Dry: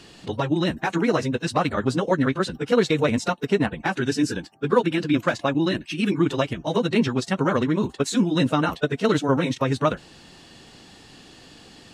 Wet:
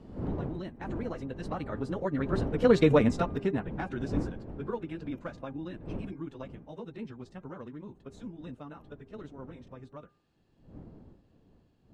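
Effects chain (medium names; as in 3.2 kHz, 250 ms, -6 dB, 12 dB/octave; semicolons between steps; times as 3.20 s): wind noise 270 Hz -26 dBFS; Doppler pass-by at 2.88 s, 10 m/s, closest 2 m; treble shelf 2.2 kHz -12 dB; in parallel at +0.5 dB: compression, threshold -40 dBFS, peak gain reduction 21.5 dB; on the sum: de-hum 401.2 Hz, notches 6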